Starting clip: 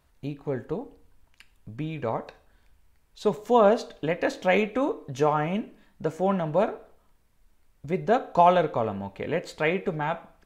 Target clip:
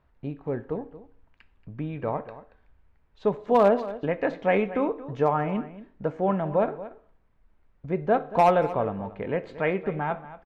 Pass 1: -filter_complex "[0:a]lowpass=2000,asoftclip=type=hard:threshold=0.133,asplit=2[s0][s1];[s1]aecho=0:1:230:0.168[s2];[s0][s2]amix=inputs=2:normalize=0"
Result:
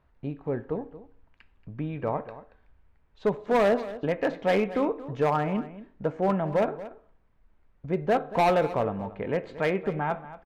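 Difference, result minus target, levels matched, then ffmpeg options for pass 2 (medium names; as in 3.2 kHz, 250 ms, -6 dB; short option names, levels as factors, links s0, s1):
hard clipper: distortion +11 dB
-filter_complex "[0:a]lowpass=2000,asoftclip=type=hard:threshold=0.266,asplit=2[s0][s1];[s1]aecho=0:1:230:0.168[s2];[s0][s2]amix=inputs=2:normalize=0"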